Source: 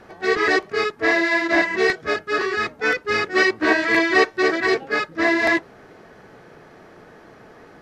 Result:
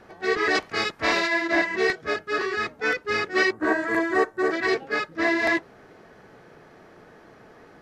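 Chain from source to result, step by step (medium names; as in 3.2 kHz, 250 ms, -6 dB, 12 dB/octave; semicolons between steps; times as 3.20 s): 0.54–1.26 s: spectral peaks clipped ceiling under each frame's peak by 16 dB; 3.52–4.51 s: high-order bell 3.5 kHz -13 dB; trim -4 dB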